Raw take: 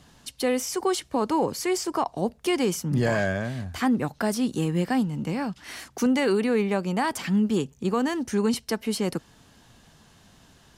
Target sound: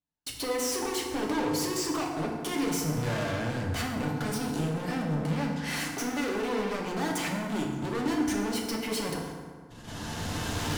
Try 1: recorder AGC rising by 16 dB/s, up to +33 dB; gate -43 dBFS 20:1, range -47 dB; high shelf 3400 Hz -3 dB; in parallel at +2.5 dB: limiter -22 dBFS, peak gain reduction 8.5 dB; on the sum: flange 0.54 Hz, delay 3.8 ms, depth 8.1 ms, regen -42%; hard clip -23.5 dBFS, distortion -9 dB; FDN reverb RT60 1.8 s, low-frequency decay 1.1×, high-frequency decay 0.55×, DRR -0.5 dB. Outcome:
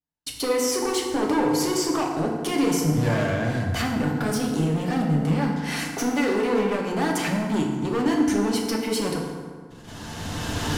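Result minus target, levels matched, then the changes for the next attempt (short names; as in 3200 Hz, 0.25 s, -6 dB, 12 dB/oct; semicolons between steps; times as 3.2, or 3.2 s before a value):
hard clip: distortion -5 dB
change: hard clip -32.5 dBFS, distortion -4 dB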